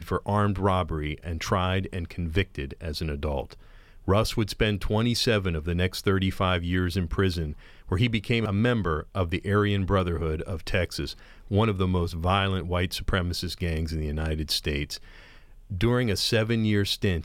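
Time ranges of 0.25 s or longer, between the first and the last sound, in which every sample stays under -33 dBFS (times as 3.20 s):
3.53–4.08 s
7.53–7.89 s
11.13–11.51 s
14.97–15.71 s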